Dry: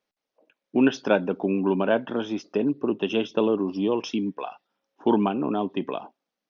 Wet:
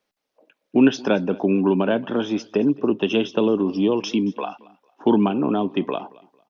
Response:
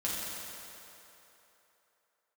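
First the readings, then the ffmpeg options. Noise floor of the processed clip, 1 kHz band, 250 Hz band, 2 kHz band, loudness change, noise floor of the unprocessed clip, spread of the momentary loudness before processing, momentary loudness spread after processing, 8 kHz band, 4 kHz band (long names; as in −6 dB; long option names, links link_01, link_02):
−78 dBFS, +2.0 dB, +5.0 dB, +2.0 dB, +4.0 dB, below −85 dBFS, 8 LU, 8 LU, can't be measured, +4.5 dB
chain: -filter_complex "[0:a]acrossover=split=360|3000[link_01][link_02][link_03];[link_02]acompressor=threshold=-28dB:ratio=3[link_04];[link_01][link_04][link_03]amix=inputs=3:normalize=0,aecho=1:1:225|450:0.075|0.0202,volume=5.5dB"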